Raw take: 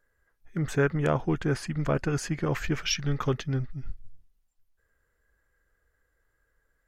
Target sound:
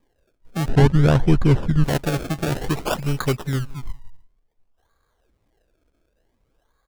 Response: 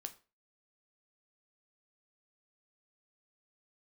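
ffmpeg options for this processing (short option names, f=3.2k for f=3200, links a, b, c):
-filter_complex "[0:a]asplit=2[a][b];[b]aecho=0:1:179:0.0668[c];[a][c]amix=inputs=2:normalize=0,acrusher=samples=31:mix=1:aa=0.000001:lfo=1:lforange=31:lforate=0.55,asettb=1/sr,asplit=3[d][e][f];[d]atrim=end=0.684[g];[e]atrim=start=0.68:end=1.84,asetpts=PTS-STARTPTS,afade=t=in:d=0.004:c=qsin,afade=t=out:st=1.156:d=0.004:c=qsin,aemphasis=mode=reproduction:type=bsi[h];[f]atrim=start=1.836[i];[g][h]acrossfade=d=0.004:c1=hsin:c2=qsin[j];[j][i]acrossfade=d=0.004:c1=qsin:c2=hsin,volume=5dB"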